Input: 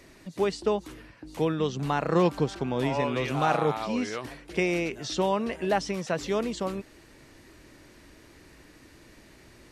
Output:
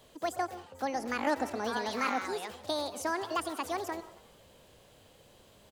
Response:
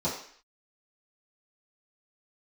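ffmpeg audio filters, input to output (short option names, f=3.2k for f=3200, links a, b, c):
-filter_complex "[0:a]asetrate=74970,aresample=44100,asplit=6[a][b][c][d][e][f];[b]adelay=90,afreqshift=47,volume=-20dB[g];[c]adelay=180,afreqshift=94,volume=-24dB[h];[d]adelay=270,afreqshift=141,volume=-28dB[i];[e]adelay=360,afreqshift=188,volume=-32dB[j];[f]adelay=450,afreqshift=235,volume=-36.1dB[k];[a][g][h][i][j][k]amix=inputs=6:normalize=0,asplit=2[l][m];[1:a]atrim=start_sample=2205,asetrate=61740,aresample=44100,adelay=125[n];[m][n]afir=irnorm=-1:irlink=0,volume=-24dB[o];[l][o]amix=inputs=2:normalize=0,volume=-6.5dB"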